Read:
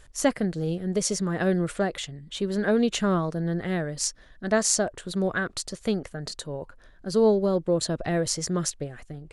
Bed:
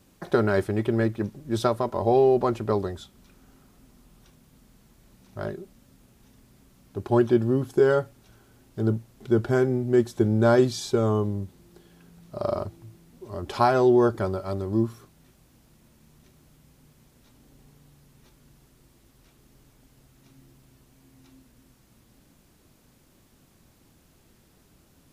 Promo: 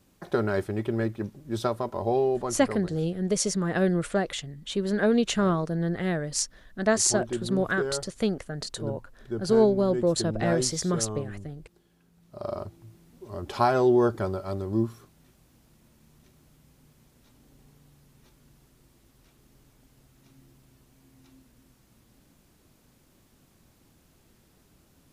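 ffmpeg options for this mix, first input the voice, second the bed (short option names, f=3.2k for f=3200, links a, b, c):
-filter_complex "[0:a]adelay=2350,volume=0dB[a];[1:a]volume=5dB,afade=t=out:st=2.01:d=0.76:silence=0.446684,afade=t=in:st=12.11:d=0.93:silence=0.354813[b];[a][b]amix=inputs=2:normalize=0"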